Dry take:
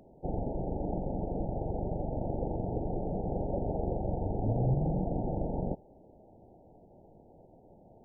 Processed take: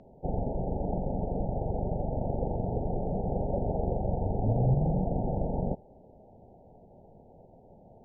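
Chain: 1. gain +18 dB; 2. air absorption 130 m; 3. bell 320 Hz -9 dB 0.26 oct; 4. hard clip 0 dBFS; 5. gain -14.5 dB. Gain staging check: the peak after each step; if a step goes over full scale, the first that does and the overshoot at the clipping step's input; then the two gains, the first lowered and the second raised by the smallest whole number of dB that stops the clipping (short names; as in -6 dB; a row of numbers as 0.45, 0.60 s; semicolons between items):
-1.0, -1.0, -1.5, -1.5, -16.0 dBFS; no overload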